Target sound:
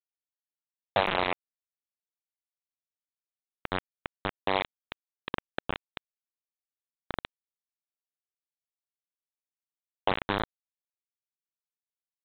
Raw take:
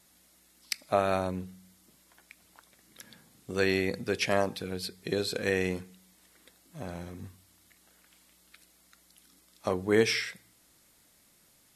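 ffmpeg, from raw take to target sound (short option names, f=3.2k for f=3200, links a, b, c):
-filter_complex "[0:a]aeval=exprs='val(0)+0.5*0.02*sgn(val(0))':c=same,asetrate=42336,aresample=44100,asplit=2[a][b];[b]aecho=0:1:80|160|240|320:0.473|0.175|0.0648|0.024[c];[a][c]amix=inputs=2:normalize=0,acompressor=threshold=-32dB:ratio=4,lowpass=f=900:t=q:w=5.5,aresample=8000,acrusher=bits=3:mix=0:aa=0.000001,aresample=44100,volume=2dB"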